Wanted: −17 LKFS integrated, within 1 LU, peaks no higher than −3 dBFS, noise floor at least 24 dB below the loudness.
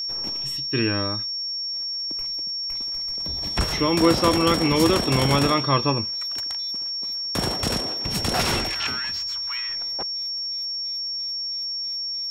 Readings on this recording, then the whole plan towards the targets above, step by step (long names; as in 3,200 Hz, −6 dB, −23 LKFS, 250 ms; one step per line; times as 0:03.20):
crackle rate 38 per second; interfering tone 5,500 Hz; level of the tone −26 dBFS; integrated loudness −23.0 LKFS; sample peak −5.0 dBFS; target loudness −17.0 LKFS
→ click removal
notch filter 5,500 Hz, Q 30
level +6 dB
brickwall limiter −3 dBFS